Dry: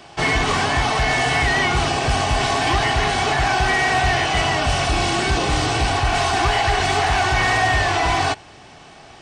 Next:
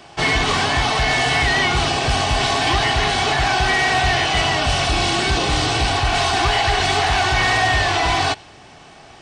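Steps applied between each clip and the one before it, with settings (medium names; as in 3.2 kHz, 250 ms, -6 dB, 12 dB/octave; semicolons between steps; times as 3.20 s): dynamic bell 3.8 kHz, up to +5 dB, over -39 dBFS, Q 1.4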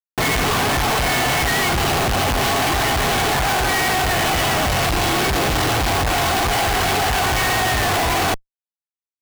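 Schmitt trigger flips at -23 dBFS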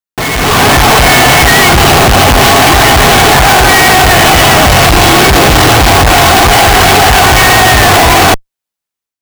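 level rider gain up to 9.5 dB; trim +4.5 dB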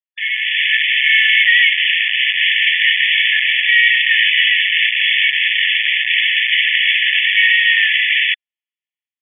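brick-wall FIR band-pass 1.7–3.5 kHz; trim -2 dB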